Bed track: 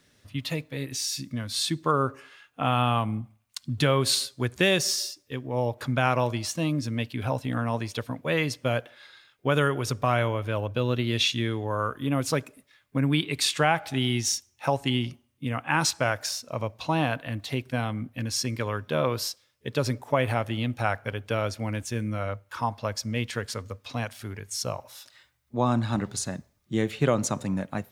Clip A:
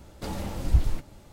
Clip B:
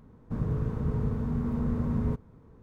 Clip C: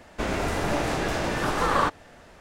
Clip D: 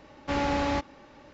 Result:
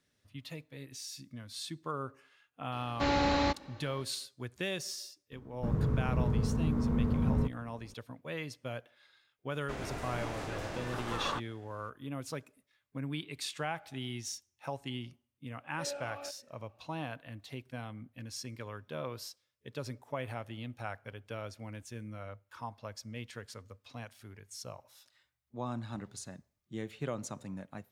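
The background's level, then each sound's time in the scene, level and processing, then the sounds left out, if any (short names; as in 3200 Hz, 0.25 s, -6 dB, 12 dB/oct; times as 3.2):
bed track -14 dB
2.72 add D -1.5 dB + bell 4100 Hz +8.5 dB 0.25 oct
5.32 add B -1 dB
9.5 add C -13.5 dB
15.5 add D -5.5 dB + vowel sweep a-e 1.6 Hz
not used: A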